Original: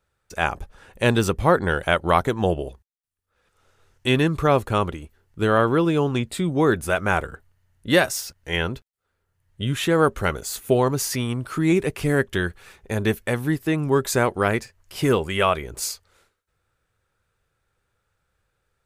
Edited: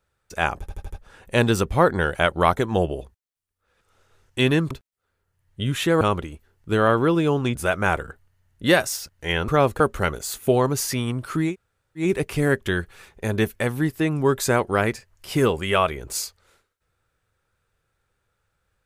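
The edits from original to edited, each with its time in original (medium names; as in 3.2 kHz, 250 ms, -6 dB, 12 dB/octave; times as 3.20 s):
0.60 s: stutter 0.08 s, 5 plays
4.39–4.71 s: swap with 8.72–10.02 s
6.25–6.79 s: delete
11.70 s: insert room tone 0.55 s, crossfade 0.16 s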